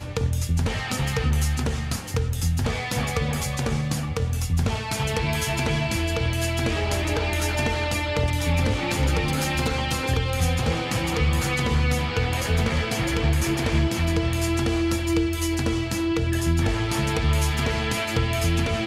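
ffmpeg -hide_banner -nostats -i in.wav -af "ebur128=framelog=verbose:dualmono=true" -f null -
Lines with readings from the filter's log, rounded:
Integrated loudness:
  I:         -21.2 LUFS
  Threshold: -31.2 LUFS
Loudness range:
  LRA:         2.1 LU
  Threshold: -41.1 LUFS
  LRA low:   -22.5 LUFS
  LRA high:  -20.4 LUFS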